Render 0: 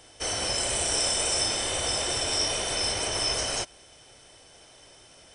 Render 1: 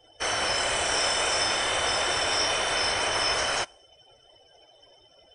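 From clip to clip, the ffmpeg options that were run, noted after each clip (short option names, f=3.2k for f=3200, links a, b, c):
-filter_complex "[0:a]acrossover=split=8500[a][b];[b]acompressor=threshold=-40dB:ratio=4:attack=1:release=60[c];[a][c]amix=inputs=2:normalize=0,afftdn=nr=23:nf=-50,equalizer=f=1.4k:t=o:w=2.6:g=13.5,volume=-4dB"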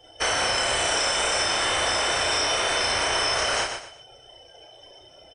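-filter_complex "[0:a]asplit=2[a][b];[b]adelay=34,volume=-4dB[c];[a][c]amix=inputs=2:normalize=0,aecho=1:1:120|240|360:0.299|0.0836|0.0234,acompressor=threshold=-26dB:ratio=6,volume=5.5dB"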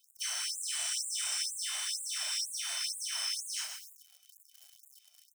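-af "acrusher=bits=8:dc=4:mix=0:aa=0.000001,aderivative,afftfilt=real='re*gte(b*sr/1024,530*pow(6900/530,0.5+0.5*sin(2*PI*2.1*pts/sr)))':imag='im*gte(b*sr/1024,530*pow(6900/530,0.5+0.5*sin(2*PI*2.1*pts/sr)))':win_size=1024:overlap=0.75,volume=-5dB"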